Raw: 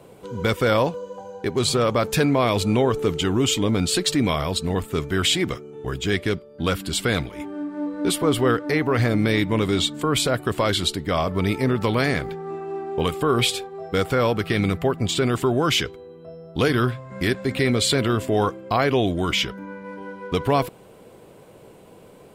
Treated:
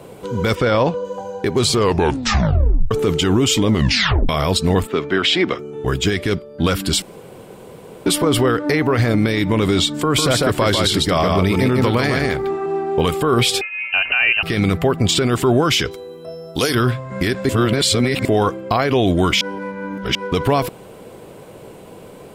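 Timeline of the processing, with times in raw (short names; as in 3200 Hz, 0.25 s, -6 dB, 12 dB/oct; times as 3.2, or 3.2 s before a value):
0.55–1.05 air absorption 90 m
1.69 tape stop 1.22 s
3.7 tape stop 0.59 s
4.87–5.59 three-band isolator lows -18 dB, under 200 Hz, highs -23 dB, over 4600 Hz
7.02–8.06 room tone
9.95–12.66 echo 0.149 s -4.5 dB
13.61–14.43 inverted band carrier 2900 Hz
15.91–16.75 tone controls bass -6 dB, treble +14 dB
17.49–18.25 reverse
19.41–20.15 reverse
whole clip: dynamic EQ 5300 Hz, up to +5 dB, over -46 dBFS, Q 5; limiter -15.5 dBFS; gain +8.5 dB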